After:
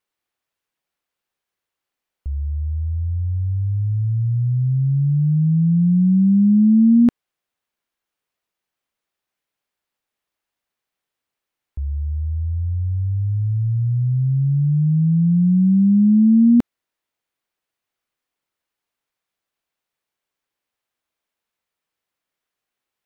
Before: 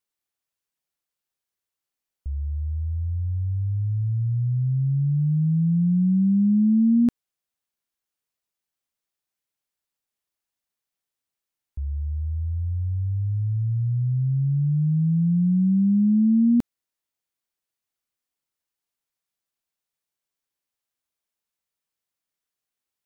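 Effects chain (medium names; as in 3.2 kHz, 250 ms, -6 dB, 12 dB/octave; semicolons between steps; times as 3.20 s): tone controls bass -4 dB, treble -9 dB; trim +8 dB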